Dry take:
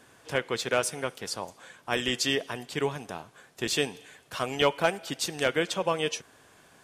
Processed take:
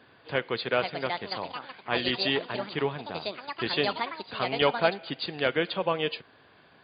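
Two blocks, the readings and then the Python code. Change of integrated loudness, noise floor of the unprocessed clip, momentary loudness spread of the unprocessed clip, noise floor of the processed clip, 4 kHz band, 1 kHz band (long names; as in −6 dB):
0.0 dB, −58 dBFS, 14 LU, −58 dBFS, +0.5 dB, +2.0 dB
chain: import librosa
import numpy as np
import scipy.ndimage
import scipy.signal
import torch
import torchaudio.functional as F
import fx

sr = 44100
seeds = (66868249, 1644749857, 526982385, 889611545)

y = scipy.signal.sosfilt(scipy.signal.butter(2, 63.0, 'highpass', fs=sr, output='sos'), x)
y = fx.echo_pitch(y, sr, ms=588, semitones=6, count=2, db_per_echo=-6.0)
y = fx.brickwall_lowpass(y, sr, high_hz=4900.0)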